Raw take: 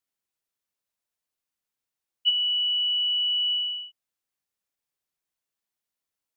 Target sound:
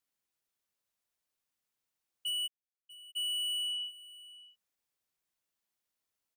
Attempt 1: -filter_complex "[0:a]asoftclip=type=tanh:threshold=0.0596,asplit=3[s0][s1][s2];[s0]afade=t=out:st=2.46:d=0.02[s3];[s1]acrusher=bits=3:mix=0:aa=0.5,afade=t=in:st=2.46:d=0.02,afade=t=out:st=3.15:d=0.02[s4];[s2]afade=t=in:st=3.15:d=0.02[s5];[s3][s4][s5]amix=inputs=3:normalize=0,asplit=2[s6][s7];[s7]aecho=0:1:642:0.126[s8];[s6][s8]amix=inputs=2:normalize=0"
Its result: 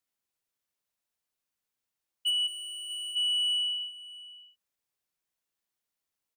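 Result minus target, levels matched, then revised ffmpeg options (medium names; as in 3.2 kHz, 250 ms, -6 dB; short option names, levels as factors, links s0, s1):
saturation: distortion -7 dB
-filter_complex "[0:a]asoftclip=type=tanh:threshold=0.0224,asplit=3[s0][s1][s2];[s0]afade=t=out:st=2.46:d=0.02[s3];[s1]acrusher=bits=3:mix=0:aa=0.5,afade=t=in:st=2.46:d=0.02,afade=t=out:st=3.15:d=0.02[s4];[s2]afade=t=in:st=3.15:d=0.02[s5];[s3][s4][s5]amix=inputs=3:normalize=0,asplit=2[s6][s7];[s7]aecho=0:1:642:0.126[s8];[s6][s8]amix=inputs=2:normalize=0"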